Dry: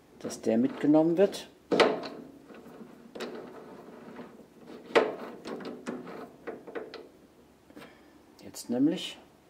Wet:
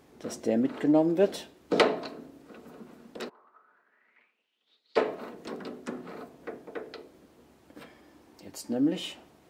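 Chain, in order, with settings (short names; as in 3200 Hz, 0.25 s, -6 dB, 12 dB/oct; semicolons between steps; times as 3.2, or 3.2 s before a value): 3.28–4.96 band-pass 960 Hz -> 4500 Hz, Q 7.3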